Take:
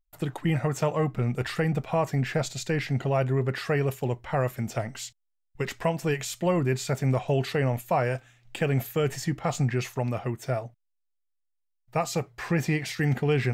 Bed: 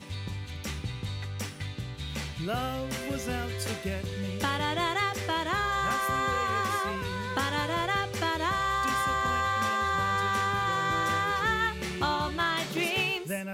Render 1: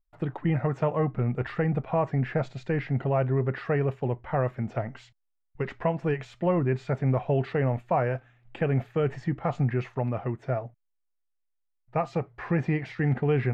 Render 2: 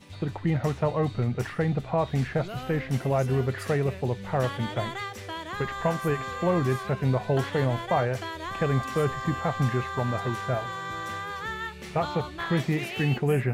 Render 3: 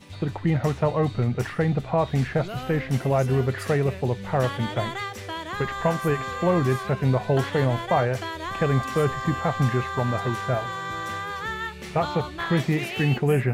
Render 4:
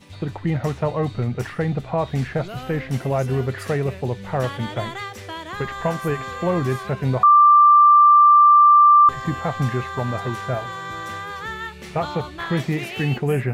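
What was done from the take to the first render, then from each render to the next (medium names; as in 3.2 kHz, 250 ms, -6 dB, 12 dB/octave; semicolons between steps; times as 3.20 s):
low-pass 1.8 kHz 12 dB/octave
add bed -6.5 dB
trim +3 dB
7.23–9.09 s: bleep 1.18 kHz -8 dBFS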